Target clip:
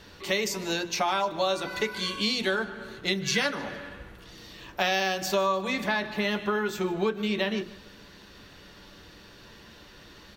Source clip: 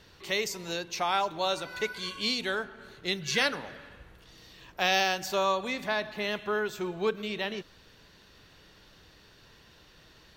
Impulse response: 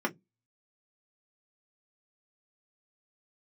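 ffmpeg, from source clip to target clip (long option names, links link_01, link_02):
-filter_complex "[0:a]asplit=2[link_01][link_02];[1:a]atrim=start_sample=2205,adelay=7[link_03];[link_02][link_03]afir=irnorm=-1:irlink=0,volume=-12.5dB[link_04];[link_01][link_04]amix=inputs=2:normalize=0,acompressor=threshold=-29dB:ratio=4,aecho=1:1:151|302|453:0.0944|0.0397|0.0167,volume=5.5dB"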